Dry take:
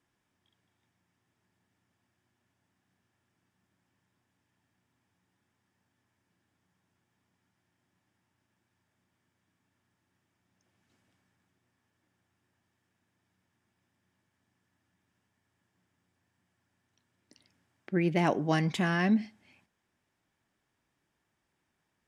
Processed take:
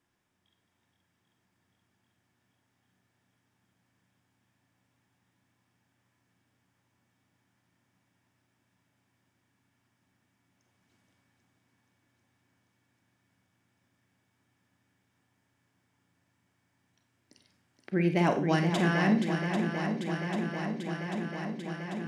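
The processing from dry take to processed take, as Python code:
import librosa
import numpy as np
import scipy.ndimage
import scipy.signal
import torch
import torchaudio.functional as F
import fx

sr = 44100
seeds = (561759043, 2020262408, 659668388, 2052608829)

y = fx.echo_swing(x, sr, ms=792, ratio=1.5, feedback_pct=76, wet_db=-7.5)
y = fx.rev_schroeder(y, sr, rt60_s=0.38, comb_ms=31, drr_db=7.0)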